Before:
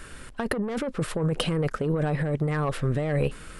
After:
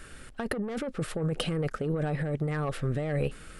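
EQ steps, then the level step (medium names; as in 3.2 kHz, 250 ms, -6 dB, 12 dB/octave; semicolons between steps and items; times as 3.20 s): band-stop 1 kHz, Q 7.1; -4.0 dB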